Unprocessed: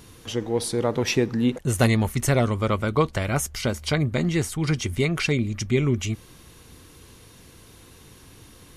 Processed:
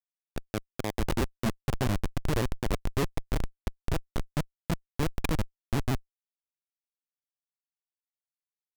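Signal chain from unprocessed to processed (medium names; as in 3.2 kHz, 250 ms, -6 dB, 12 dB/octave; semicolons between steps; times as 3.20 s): Schmitt trigger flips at -16.5 dBFS; vibrato with a chosen wave square 6.6 Hz, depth 160 cents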